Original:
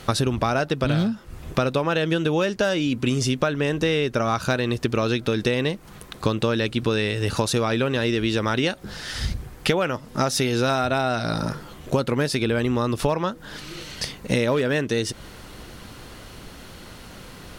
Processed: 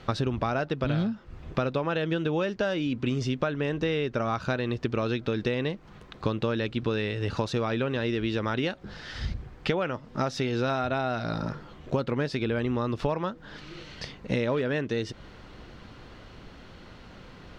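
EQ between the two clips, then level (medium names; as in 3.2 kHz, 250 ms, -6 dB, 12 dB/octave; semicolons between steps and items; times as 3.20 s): distance through air 180 m; treble shelf 12 kHz +11 dB; -5.0 dB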